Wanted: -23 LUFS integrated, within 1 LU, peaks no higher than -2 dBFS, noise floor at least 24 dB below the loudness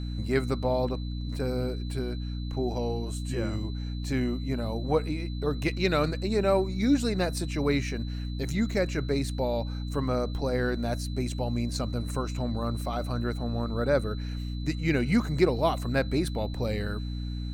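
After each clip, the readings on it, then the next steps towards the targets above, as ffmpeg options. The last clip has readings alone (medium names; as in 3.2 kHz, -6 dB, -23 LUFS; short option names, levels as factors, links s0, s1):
hum 60 Hz; highest harmonic 300 Hz; hum level -31 dBFS; steady tone 4 kHz; tone level -48 dBFS; loudness -29.5 LUFS; peak level -10.0 dBFS; loudness target -23.0 LUFS
-> -af "bandreject=f=60:t=h:w=6,bandreject=f=120:t=h:w=6,bandreject=f=180:t=h:w=6,bandreject=f=240:t=h:w=6,bandreject=f=300:t=h:w=6"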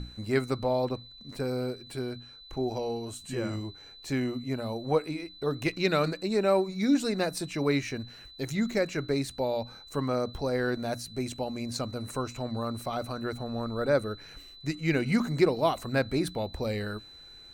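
hum not found; steady tone 4 kHz; tone level -48 dBFS
-> -af "bandreject=f=4000:w=30"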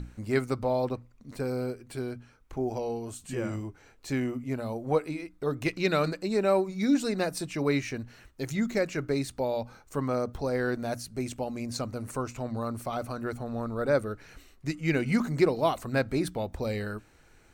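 steady tone not found; loudness -30.5 LUFS; peak level -11.5 dBFS; loudness target -23.0 LUFS
-> -af "volume=2.37"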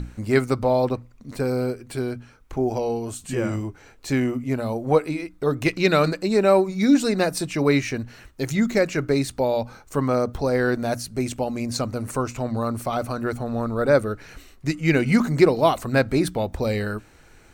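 loudness -23.0 LUFS; peak level -4.0 dBFS; noise floor -51 dBFS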